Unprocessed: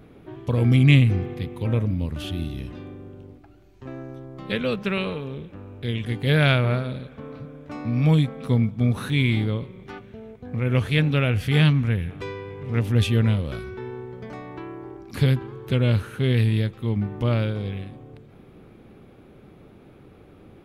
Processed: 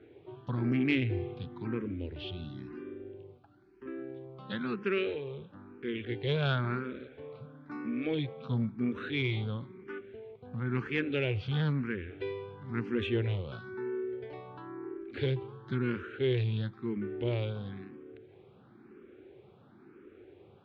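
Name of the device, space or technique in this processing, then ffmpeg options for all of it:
barber-pole phaser into a guitar amplifier: -filter_complex "[0:a]asplit=2[a][b];[b]afreqshift=0.99[c];[a][c]amix=inputs=2:normalize=1,asoftclip=type=tanh:threshold=-15dB,highpass=110,equalizer=f=170:t=q:w=4:g=-6,equalizer=f=370:t=q:w=4:g=9,equalizer=f=640:t=q:w=4:g=-4,equalizer=f=1.5k:t=q:w=4:g=5,lowpass=f=4.1k:w=0.5412,lowpass=f=4.1k:w=1.3066,volume=-5.5dB"

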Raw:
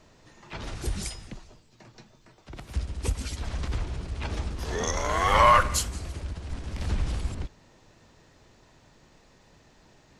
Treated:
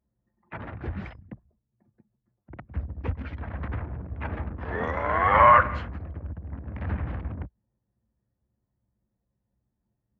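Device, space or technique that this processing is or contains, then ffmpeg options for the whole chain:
bass cabinet: -af "anlmdn=0.631,highpass=f=70:w=0.5412,highpass=f=70:w=1.3066,equalizer=f=150:t=q:w=4:g=-3,equalizer=f=390:t=q:w=4:g=-6,equalizer=f=1.7k:t=q:w=4:g=3,lowpass=f=2.1k:w=0.5412,lowpass=f=2.1k:w=1.3066,volume=2.5dB"

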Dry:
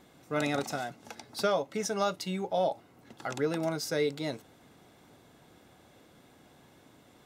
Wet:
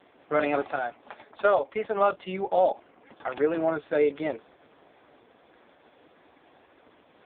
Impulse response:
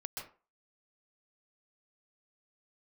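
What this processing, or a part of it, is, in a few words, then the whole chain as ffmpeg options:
telephone: -filter_complex "[0:a]asettb=1/sr,asplit=3[a][b][c];[a]atrim=end=0.604[d];[b]atrim=start=0.6:end=2,asetpts=PTS-STARTPTS,afade=t=in:d=0.004:c=qsin,afade=t=out:st=1.396:d=0.004:c=qsin,lowshelf=f=220:g=-6[e];[c]atrim=start=1.996[f];[d][e]acrossfade=d=0.004:c1=hsin:c2=qsin[g];[g][f]acrossfade=d=0.004:c1=qsin:c2=hsin,highpass=340,lowpass=3.4k,volume=8dB" -ar 8000 -c:a libopencore_amrnb -b:a 4750

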